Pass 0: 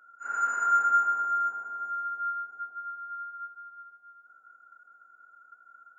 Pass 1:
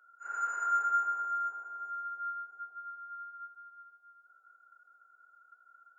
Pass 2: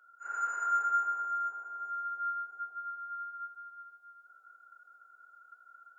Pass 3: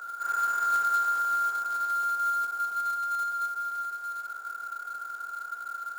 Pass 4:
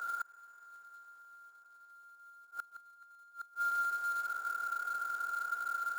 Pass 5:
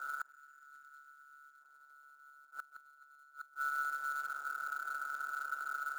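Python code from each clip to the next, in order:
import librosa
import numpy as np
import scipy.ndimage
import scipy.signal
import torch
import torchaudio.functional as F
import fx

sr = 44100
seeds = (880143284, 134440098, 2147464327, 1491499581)

y1 = scipy.signal.sosfilt(scipy.signal.butter(4, 330.0, 'highpass', fs=sr, output='sos'), x)
y1 = y1 * librosa.db_to_amplitude(-6.0)
y2 = fx.rider(y1, sr, range_db=4, speed_s=2.0)
y3 = fx.bin_compress(y2, sr, power=0.4)
y3 = fx.quant_float(y3, sr, bits=2)
y3 = y3 * librosa.db_to_amplitude(2.0)
y4 = fx.gate_flip(y3, sr, shuts_db=-27.0, range_db=-29)
y5 = fx.spec_box(y4, sr, start_s=0.31, length_s=1.3, low_hz=420.0, high_hz=1300.0, gain_db=-18)
y5 = y5 * np.sin(2.0 * np.pi * 71.0 * np.arange(len(y5)) / sr)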